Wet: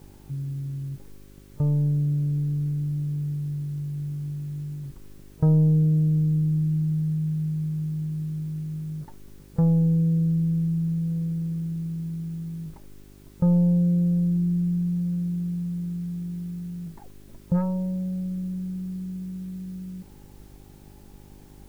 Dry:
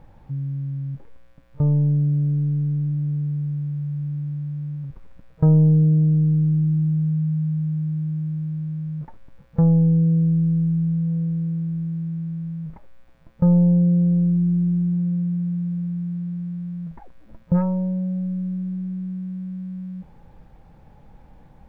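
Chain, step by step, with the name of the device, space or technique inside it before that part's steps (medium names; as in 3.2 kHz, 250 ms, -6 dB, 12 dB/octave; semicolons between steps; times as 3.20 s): video cassette with head-switching buzz (mains buzz 50 Hz, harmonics 8, -46 dBFS -3 dB/octave; white noise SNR 35 dB); trim -4 dB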